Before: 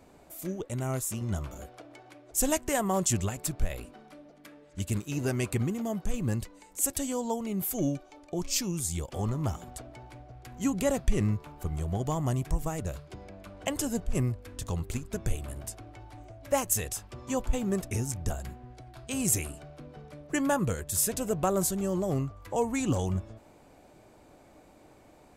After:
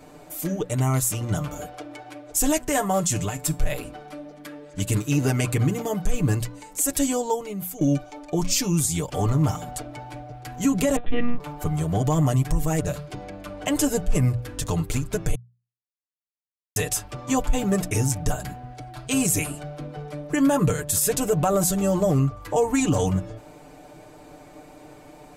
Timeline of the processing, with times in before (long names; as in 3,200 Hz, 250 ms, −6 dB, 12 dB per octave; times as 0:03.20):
0:02.64–0:03.59: tuned comb filter 54 Hz, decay 0.22 s, harmonics odd, mix 50%
0:07.05–0:07.81: fade out linear, to −16.5 dB
0:10.96–0:11.40: one-pitch LPC vocoder at 8 kHz 240 Hz
0:15.35–0:16.76: silence
whole clip: mains-hum notches 60/120/180 Hz; comb filter 6.7 ms, depth 85%; brickwall limiter −19.5 dBFS; level +7.5 dB